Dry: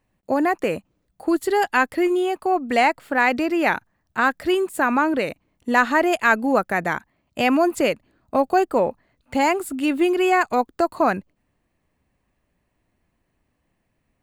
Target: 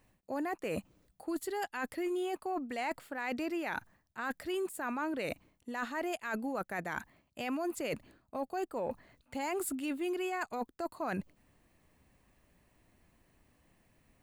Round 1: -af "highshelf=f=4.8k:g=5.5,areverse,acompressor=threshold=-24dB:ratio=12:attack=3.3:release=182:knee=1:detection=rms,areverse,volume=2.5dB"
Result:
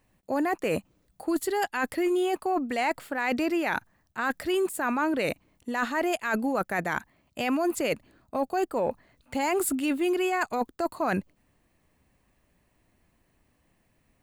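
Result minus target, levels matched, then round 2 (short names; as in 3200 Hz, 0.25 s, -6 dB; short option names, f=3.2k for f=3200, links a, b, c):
compressor: peak gain reduction -9 dB
-af "highshelf=f=4.8k:g=5.5,areverse,acompressor=threshold=-34dB:ratio=12:attack=3.3:release=182:knee=1:detection=rms,areverse,volume=2.5dB"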